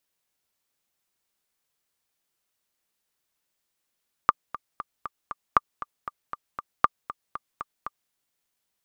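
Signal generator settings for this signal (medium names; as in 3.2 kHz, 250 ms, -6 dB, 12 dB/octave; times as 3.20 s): metronome 235 bpm, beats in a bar 5, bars 3, 1.19 kHz, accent 16 dB -3 dBFS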